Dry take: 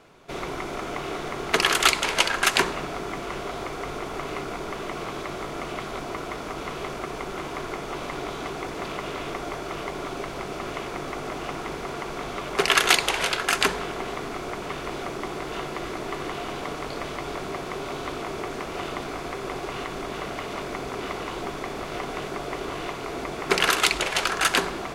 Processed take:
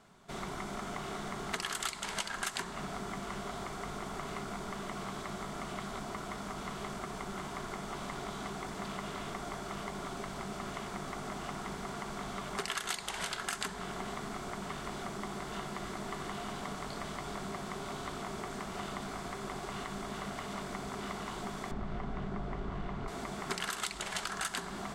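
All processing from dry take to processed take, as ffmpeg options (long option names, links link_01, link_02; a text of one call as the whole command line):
ffmpeg -i in.wav -filter_complex "[0:a]asettb=1/sr,asplit=3[link_01][link_02][link_03];[link_01]atrim=end=21.714[link_04];[link_02]atrim=start=21.71:end=23.08,asetpts=PTS-STARTPTS,afade=type=in:duration=0.004:curve=qsin,afade=type=out:start_time=1.366:duration=0.004:curve=qsin,lowpass=frequency=3000:poles=1,aemphasis=mode=reproduction:type=bsi[link_05];[link_03]atrim=start=23.076[link_06];[link_04][link_05]acrossfade=duration=0.004:curve1=hsin:curve2=qsin[link_07];[link_07][link_06]acrossfade=duration=0.004:curve1=qsin:curve2=hsin,equalizer=frequency=200:width_type=o:width=0.33:gain=10,equalizer=frequency=315:width_type=o:width=0.33:gain=-8,equalizer=frequency=500:width_type=o:width=0.33:gain=-10,equalizer=frequency=2500:width_type=o:width=0.33:gain=-7,equalizer=frequency=8000:width_type=o:width=0.33:gain=7,acompressor=threshold=-27dB:ratio=5,volume=-6.5dB" out.wav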